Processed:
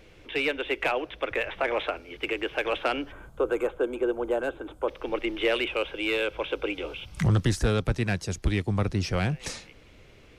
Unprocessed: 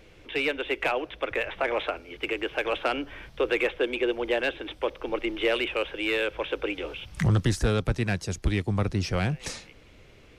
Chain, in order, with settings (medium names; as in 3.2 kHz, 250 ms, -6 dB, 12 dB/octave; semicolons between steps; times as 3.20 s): 3.12–4.88 s: time-frequency box 1.6–6.3 kHz -15 dB; 5.66–7.25 s: band-stop 1.8 kHz, Q 6.8